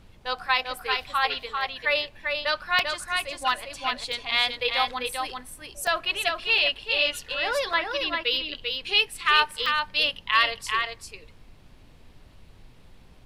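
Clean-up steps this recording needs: interpolate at 2.79/4.12/5.87/6.58/7.73/9.66 s, 2.7 ms; noise print and reduce 22 dB; inverse comb 393 ms -4.5 dB

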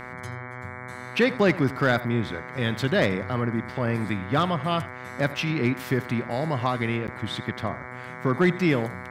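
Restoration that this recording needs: clip repair -11.5 dBFS; de-hum 125.2 Hz, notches 18; interpolate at 7.07 s, 9.4 ms; inverse comb 84 ms -17.5 dB

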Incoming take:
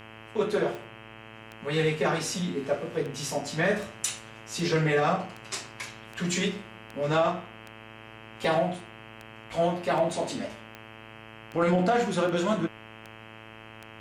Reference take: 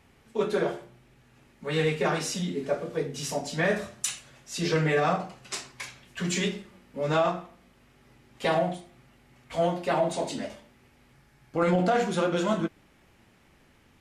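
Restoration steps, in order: de-click; de-hum 110.5 Hz, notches 29; band-stop 2.6 kHz, Q 30

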